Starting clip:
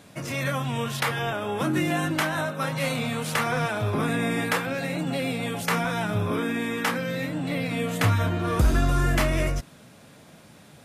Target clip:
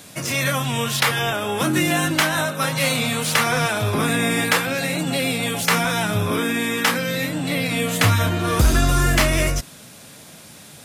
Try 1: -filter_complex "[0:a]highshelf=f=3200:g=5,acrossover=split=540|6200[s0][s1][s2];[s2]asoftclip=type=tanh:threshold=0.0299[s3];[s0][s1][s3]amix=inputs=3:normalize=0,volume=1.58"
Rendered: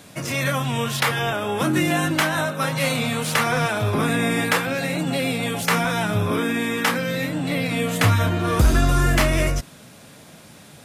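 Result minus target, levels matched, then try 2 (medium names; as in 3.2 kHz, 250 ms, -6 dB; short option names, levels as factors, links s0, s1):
8 kHz band -3.5 dB
-filter_complex "[0:a]highshelf=f=3200:g=12.5,acrossover=split=540|6200[s0][s1][s2];[s2]asoftclip=type=tanh:threshold=0.0299[s3];[s0][s1][s3]amix=inputs=3:normalize=0,volume=1.58"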